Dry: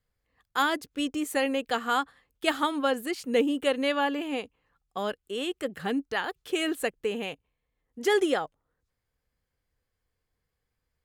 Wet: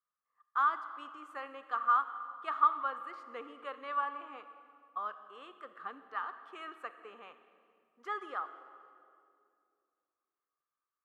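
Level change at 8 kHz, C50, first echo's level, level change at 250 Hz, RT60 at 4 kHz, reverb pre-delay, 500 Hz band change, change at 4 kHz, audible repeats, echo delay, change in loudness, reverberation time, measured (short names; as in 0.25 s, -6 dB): under -30 dB, 11.0 dB, none, -26.5 dB, 1.7 s, 30 ms, -20.5 dB, -22.0 dB, none, none, -7.0 dB, 2.4 s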